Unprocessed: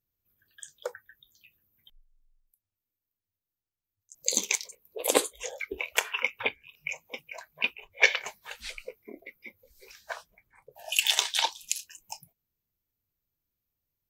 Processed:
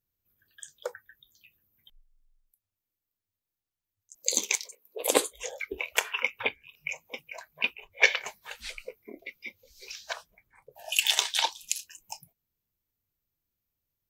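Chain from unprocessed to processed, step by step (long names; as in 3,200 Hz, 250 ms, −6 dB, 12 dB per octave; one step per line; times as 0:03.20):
0:04.16–0:05.02: high-pass filter 230 Hz 24 dB per octave
0:09.19–0:10.13: flat-topped bell 4,100 Hz +11.5 dB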